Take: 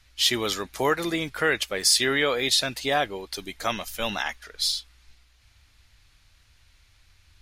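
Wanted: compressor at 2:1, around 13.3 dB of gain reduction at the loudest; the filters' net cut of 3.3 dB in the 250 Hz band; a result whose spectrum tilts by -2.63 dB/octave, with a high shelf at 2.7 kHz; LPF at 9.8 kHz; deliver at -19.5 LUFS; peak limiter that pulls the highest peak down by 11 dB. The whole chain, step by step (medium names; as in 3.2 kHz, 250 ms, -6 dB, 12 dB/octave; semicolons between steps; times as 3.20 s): low-pass 9.8 kHz; peaking EQ 250 Hz -4.5 dB; treble shelf 2.7 kHz -4 dB; compression 2:1, threshold -45 dBFS; trim +24.5 dB; peak limiter -9 dBFS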